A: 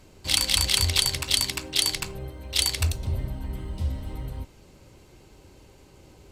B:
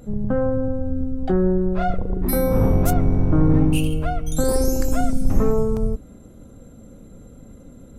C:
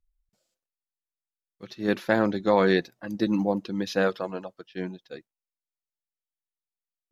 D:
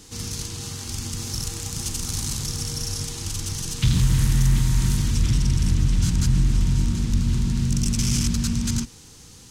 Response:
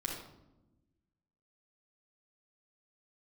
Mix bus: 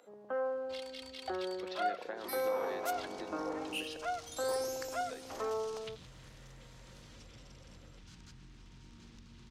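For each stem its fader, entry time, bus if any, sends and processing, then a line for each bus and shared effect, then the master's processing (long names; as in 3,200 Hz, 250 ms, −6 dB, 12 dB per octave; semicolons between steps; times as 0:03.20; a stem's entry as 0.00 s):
−9.5 dB, 0.45 s, bus A, no send, downward compressor 2 to 1, threshold −35 dBFS, peak gain reduction 10.5 dB; barber-pole flanger 2.9 ms +0.4 Hz
−7.0 dB, 0.00 s, no bus, no send, high-pass filter 570 Hz 12 dB per octave; high-shelf EQ 5,900 Hz +7 dB
+1.0 dB, 0.00 s, muted 0:03.97–0:05.01, bus A, no send, downward compressor 2 to 1, threshold −38 dBFS, peak gain reduction 12 dB; high-pass filter 240 Hz
−13.5 dB, 2.05 s, bus A, no send, no processing
bus A: 0.0 dB, downward compressor 4 to 1, threshold −40 dBFS, peak gain reduction 11.5 dB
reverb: not used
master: three-way crossover with the lows and the highs turned down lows −15 dB, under 320 Hz, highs −16 dB, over 5,000 Hz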